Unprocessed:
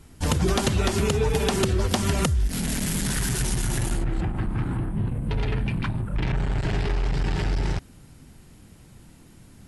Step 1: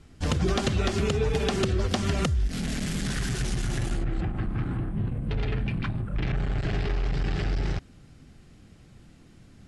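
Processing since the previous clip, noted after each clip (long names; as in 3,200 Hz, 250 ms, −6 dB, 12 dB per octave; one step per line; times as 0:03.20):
low-pass filter 6,100 Hz 12 dB per octave
notch filter 930 Hz, Q 7.1
level −2.5 dB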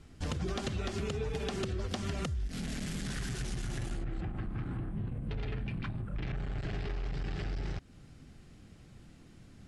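downward compressor 2 to 1, threshold −35 dBFS, peak gain reduction 8 dB
level −2.5 dB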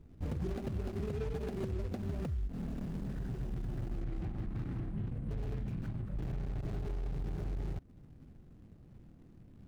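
running median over 41 samples
level −1 dB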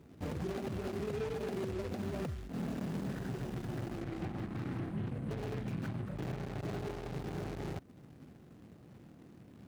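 high-pass filter 98 Hz 12 dB per octave
low-shelf EQ 240 Hz −9 dB
brickwall limiter −37 dBFS, peak gain reduction 8 dB
level +8.5 dB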